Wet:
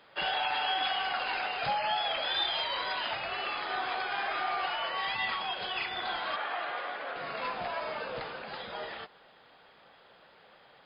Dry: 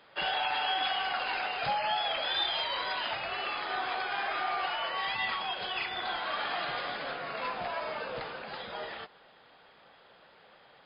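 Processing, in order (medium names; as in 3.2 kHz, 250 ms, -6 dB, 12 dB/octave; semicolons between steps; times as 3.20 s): 6.36–7.16 s: band-pass 380–2500 Hz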